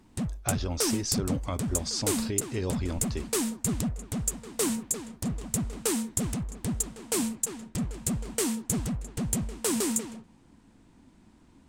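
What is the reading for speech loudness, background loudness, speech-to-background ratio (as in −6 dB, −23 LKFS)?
−33.0 LKFS, −30.5 LKFS, −2.5 dB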